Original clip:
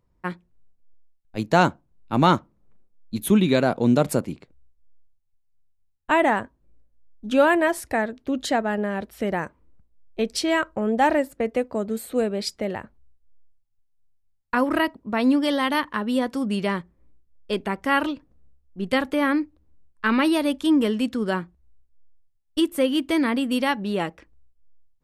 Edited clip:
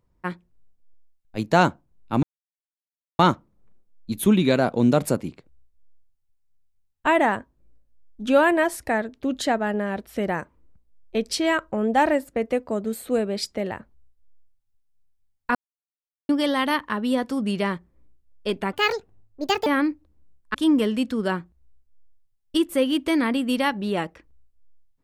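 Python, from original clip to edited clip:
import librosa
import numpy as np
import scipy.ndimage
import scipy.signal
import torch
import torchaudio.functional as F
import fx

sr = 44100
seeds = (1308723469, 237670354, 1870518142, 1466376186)

y = fx.edit(x, sr, fx.insert_silence(at_s=2.23, length_s=0.96),
    fx.silence(start_s=14.59, length_s=0.74),
    fx.speed_span(start_s=17.77, length_s=1.41, speed=1.51),
    fx.cut(start_s=20.06, length_s=0.51), tone=tone)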